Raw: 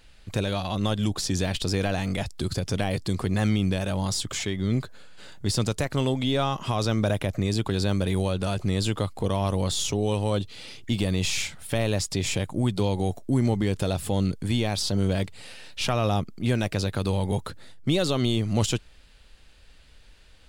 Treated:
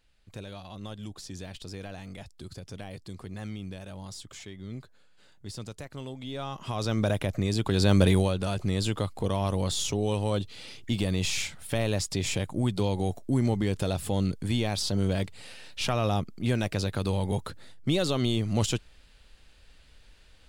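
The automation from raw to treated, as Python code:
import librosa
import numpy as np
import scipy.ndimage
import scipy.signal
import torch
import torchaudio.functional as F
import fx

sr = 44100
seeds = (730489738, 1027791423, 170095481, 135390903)

y = fx.gain(x, sr, db=fx.line((6.17, -14.5), (7.01, -2.0), (7.58, -2.0), (8.04, 6.0), (8.37, -2.5)))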